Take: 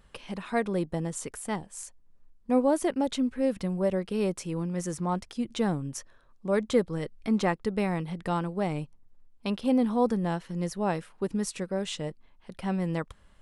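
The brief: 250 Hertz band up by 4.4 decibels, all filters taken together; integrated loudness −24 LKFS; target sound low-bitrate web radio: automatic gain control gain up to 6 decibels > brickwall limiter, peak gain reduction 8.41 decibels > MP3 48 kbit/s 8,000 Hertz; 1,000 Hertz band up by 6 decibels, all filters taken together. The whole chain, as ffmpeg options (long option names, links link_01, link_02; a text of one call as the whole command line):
ffmpeg -i in.wav -af "equalizer=frequency=250:width_type=o:gain=5,equalizer=frequency=1000:width_type=o:gain=7.5,dynaudnorm=maxgain=6dB,alimiter=limit=-17dB:level=0:latency=1,volume=5dB" -ar 8000 -c:a libmp3lame -b:a 48k out.mp3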